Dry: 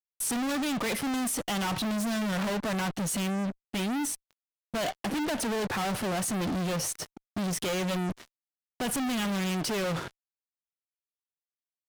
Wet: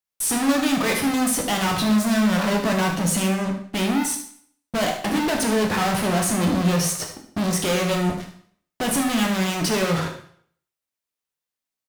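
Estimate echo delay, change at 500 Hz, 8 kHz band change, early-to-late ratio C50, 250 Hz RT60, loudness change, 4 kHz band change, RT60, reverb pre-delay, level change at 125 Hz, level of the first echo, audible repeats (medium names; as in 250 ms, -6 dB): 74 ms, +8.5 dB, +8.0 dB, 6.0 dB, 0.60 s, +8.5 dB, +8.0 dB, 0.60 s, 6 ms, +9.0 dB, -10.0 dB, 1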